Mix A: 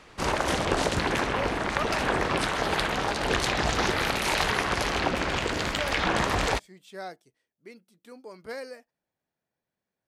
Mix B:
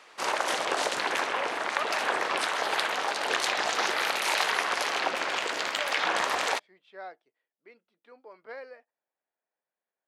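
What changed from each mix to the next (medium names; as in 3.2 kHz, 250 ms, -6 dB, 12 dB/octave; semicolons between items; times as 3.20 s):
speech: add distance through air 370 m; master: add high-pass 560 Hz 12 dB/octave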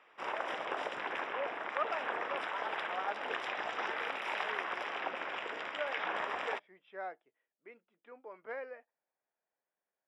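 background -9.0 dB; master: add Savitzky-Golay filter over 25 samples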